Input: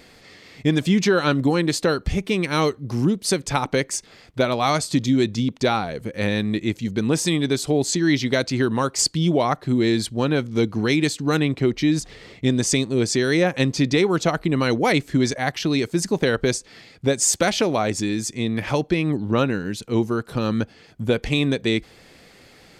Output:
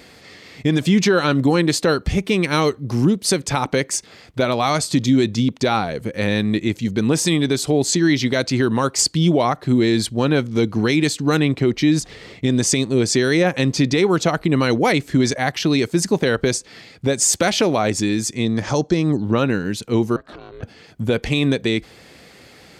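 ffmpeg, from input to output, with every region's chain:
-filter_complex "[0:a]asettb=1/sr,asplit=3[a][b][c];[a]atrim=end=18.454[d];[b]atrim=start=18.45:end=19.22,asetpts=PTS-STARTPTS,afade=t=in:d=0.004:c=qsin,afade=t=out:st=0.766:d=0.004:c=qsin,lowpass=f=6.5k:t=q:w=2.9,equalizer=f=2.5k:w=1.5:g=-10[e];[c]atrim=start=19.216[f];[d][e]acrossfade=d=0.004:c1=hsin:c2=qsin[g];[g][f]acrossfade=d=0.004:c1=qsin:c2=hsin,asettb=1/sr,asplit=3[h][i][j];[h]atrim=end=20.164[k];[i]atrim=start=20.16:end=20.63,asetpts=PTS-STARTPTS,afade=t=in:d=0.004:c=qsin,afade=t=out:st=0.466:d=0.004:c=qsin,highpass=190,lowpass=4.1k,acompressor=threshold=-33dB:ratio=20:attack=3.2:release=140:knee=1:detection=peak,aeval=exprs='val(0)*sin(2*PI*190*n/s)':c=same[l];[j]atrim=start=20.626[m];[k][l]acrossfade=d=0.004:c1=hsin:c2=qsin[n];[n][m]acrossfade=d=0.004:c1=qsin:c2=hsin,highpass=48,alimiter=level_in=10dB:limit=-1dB:release=50:level=0:latency=1,volume=-6dB"

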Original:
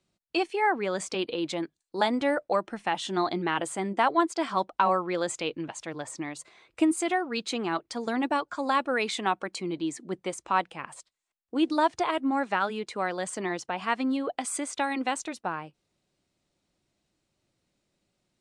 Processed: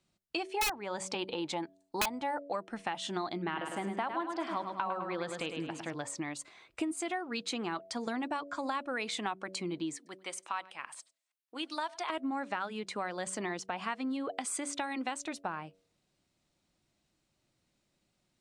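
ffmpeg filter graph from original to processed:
-filter_complex "[0:a]asettb=1/sr,asplit=3[a][b][c];[a]atrim=end=0.514[d];[b]atrim=start=0.51:end=2.44,asetpts=PTS-STARTPTS,afade=t=in:d=0.004:c=qsin,afade=t=out:st=1.926:d=0.004:c=qsin,equalizer=f=870:t=o:w=0.3:g=14.5,aeval=exprs='(mod(2.99*val(0)+1,2)-1)/2.99':c=same[e];[c]atrim=start=2.436[f];[d][e]acrossfade=d=0.004:c1=hsin:c2=qsin[g];[g][f]acrossfade=d=0.004:c1=qsin:c2=hsin,asettb=1/sr,asplit=3[h][i][j];[h]atrim=end=3.374[k];[i]atrim=start=3.37:end=5.94,asetpts=PTS-STARTPTS,afade=t=in:d=0.004:c=qsin,afade=t=out:st=2.566:d=0.004:c=qsin,equalizer=f=7.4k:t=o:w=0.97:g=-12,aecho=1:1:104|208|312|416|520:0.447|0.183|0.0751|0.0308|0.0126,atrim=end_sample=113337[l];[j]atrim=start=5.936[m];[k][l]acrossfade=d=0.004:c1=hsin:c2=qsin[n];[n][m]acrossfade=d=0.004:c1=qsin:c2=hsin,asettb=1/sr,asplit=3[o][p][q];[o]atrim=end=9.964[r];[p]atrim=start=9.96:end=12.1,asetpts=PTS-STARTPTS,afade=t=in:d=0.004:c=qsin,afade=t=out:st=2.136:d=0.004:c=qsin,highpass=f=1.5k:p=1,equalizer=f=7.1k:t=o:w=0.22:g=-5,aecho=1:1:98:0.0631,atrim=end_sample=94374[s];[q]atrim=start=12.096[t];[r][s]acrossfade=d=0.004:c1=hsin:c2=qsin[u];[u][t]acrossfade=d=0.004:c1=qsin:c2=hsin,equalizer=f=440:t=o:w=0.77:g=-3.5,bandreject=f=94.74:t=h:w=4,bandreject=f=189.48:t=h:w=4,bandreject=f=284.22:t=h:w=4,bandreject=f=378.96:t=h:w=4,bandreject=f=473.7:t=h:w=4,bandreject=f=568.44:t=h:w=4,bandreject=f=663.18:t=h:w=4,acompressor=threshold=-33dB:ratio=4"

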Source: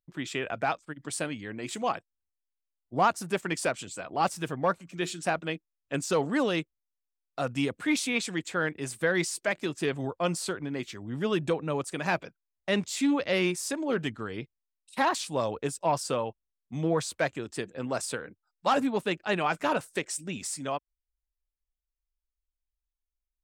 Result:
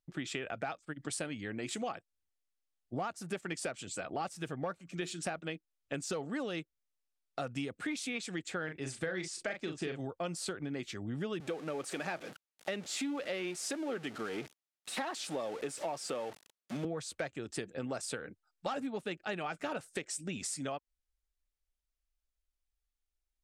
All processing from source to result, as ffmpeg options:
-filter_complex "[0:a]asettb=1/sr,asplit=3[a][b][c];[a]atrim=end=8.644[d];[b]atrim=start=8.64:end=10,asetpts=PTS-STARTPTS,afade=t=in:d=0.004:c=qsin,afade=t=out:st=1.356:d=0.004:c=qsin,lowpass=7.7k,asplit=2[e][f];[f]adelay=38,volume=-6dB[g];[e][g]amix=inputs=2:normalize=0,atrim=end_sample=59976[h];[c]atrim=start=9.996[i];[d][h]acrossfade=d=0.004:c1=hsin:c2=qsin[j];[j][i]acrossfade=d=0.004:c1=qsin:c2=hsin,asettb=1/sr,asplit=3[k][l][m];[k]atrim=end=11.404[n];[l]atrim=start=11.4:end=16.85,asetpts=PTS-STARTPTS,afade=t=in:d=0.004:c=qsin,afade=t=out:st=5.446:d=0.004:c=qsin,aeval=exprs='val(0)+0.5*0.0188*sgn(val(0))':c=same,highpass=240,highshelf=f=5.6k:g=-4.5[o];[m]atrim=start=16.846[p];[n][o]acrossfade=d=0.004:c1=hsin:c2=qsin[q];[q][p]acrossfade=d=0.004:c1=qsin:c2=hsin,lowpass=11k,bandreject=f=1k:w=6.4,acompressor=threshold=-36dB:ratio=6,volume=1dB"

